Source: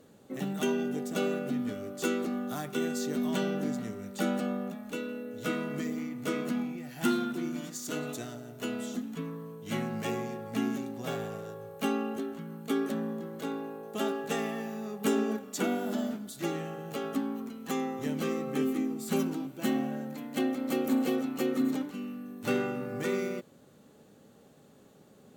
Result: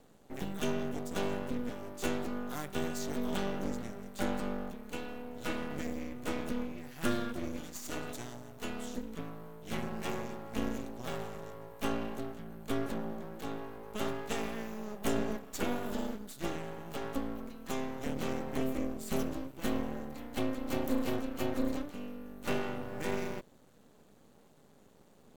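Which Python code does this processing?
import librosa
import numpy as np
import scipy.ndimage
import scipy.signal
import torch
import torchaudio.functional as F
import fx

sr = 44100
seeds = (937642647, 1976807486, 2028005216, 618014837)

y = np.maximum(x, 0.0)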